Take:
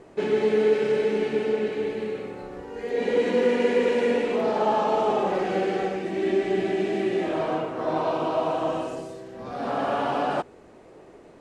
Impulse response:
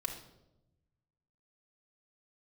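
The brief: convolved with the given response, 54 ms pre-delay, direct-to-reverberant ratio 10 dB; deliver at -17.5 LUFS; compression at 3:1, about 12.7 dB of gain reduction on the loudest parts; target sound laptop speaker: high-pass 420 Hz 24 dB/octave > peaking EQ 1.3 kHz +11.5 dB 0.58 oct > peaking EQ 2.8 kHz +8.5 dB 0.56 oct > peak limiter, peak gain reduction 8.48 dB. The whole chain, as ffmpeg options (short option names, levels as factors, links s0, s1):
-filter_complex "[0:a]acompressor=threshold=0.0178:ratio=3,asplit=2[s0][s1];[1:a]atrim=start_sample=2205,adelay=54[s2];[s1][s2]afir=irnorm=-1:irlink=0,volume=0.282[s3];[s0][s3]amix=inputs=2:normalize=0,highpass=f=420:w=0.5412,highpass=f=420:w=1.3066,equalizer=f=1300:t=o:w=0.58:g=11.5,equalizer=f=2800:t=o:w=0.56:g=8.5,volume=9.44,alimiter=limit=0.376:level=0:latency=1"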